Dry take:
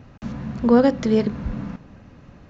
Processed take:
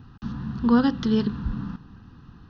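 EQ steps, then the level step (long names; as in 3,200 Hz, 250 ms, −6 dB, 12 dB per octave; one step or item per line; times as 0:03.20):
dynamic equaliser 3,000 Hz, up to +4 dB, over −46 dBFS, Q 1.3
phaser with its sweep stopped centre 2,200 Hz, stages 6
0.0 dB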